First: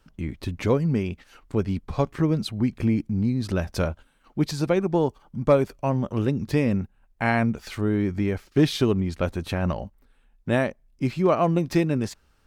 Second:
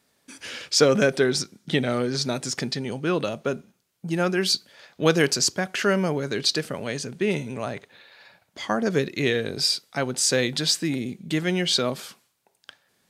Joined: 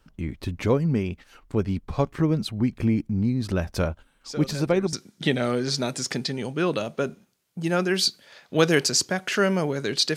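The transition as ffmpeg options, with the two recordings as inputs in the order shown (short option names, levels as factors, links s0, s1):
-filter_complex "[1:a]asplit=2[s0][s1];[0:a]apad=whole_dur=10.16,atrim=end=10.16,atrim=end=4.932[s2];[s1]atrim=start=1.398:end=6.63[s3];[s0]atrim=start=0.68:end=1.4,asetpts=PTS-STARTPTS,volume=0.126,afade=t=in:d=0.004:c=hsin,afade=t=out:st=0.716:d=0.004:c=hsin,adelay=185661S[s4];[s2][s3]acrossfade=d=0.004:c1=hsin:c2=hsin[s5];[s5][s4]amix=inputs=2:normalize=0"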